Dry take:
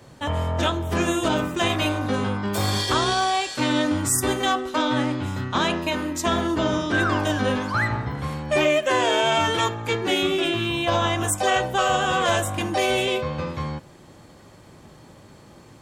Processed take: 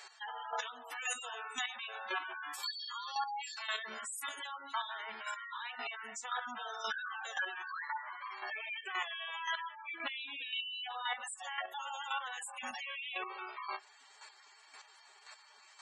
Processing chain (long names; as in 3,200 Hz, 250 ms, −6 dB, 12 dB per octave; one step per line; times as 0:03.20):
in parallel at −6 dB: soft clipping −19.5 dBFS, distortion −13 dB
on the sum: Bessel high-pass filter 1,900 Hz, order 2
notch filter 3,400 Hz, Q 29
downward compressor 5 to 1, threshold −31 dBFS, peak gain reduction 13 dB
on a send at −21.5 dB: convolution reverb RT60 0.55 s, pre-delay 3 ms
on the sum: phase-vocoder pitch shift with formants kept −5.5 semitones
gate on every frequency bin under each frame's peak −10 dB strong
dynamic equaliser 3,800 Hz, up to −6 dB, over −51 dBFS, Q 1
brickwall limiter −32 dBFS, peak gain reduction 9 dB
square-wave tremolo 1.9 Hz, depth 60%, duty 15%
level +6 dB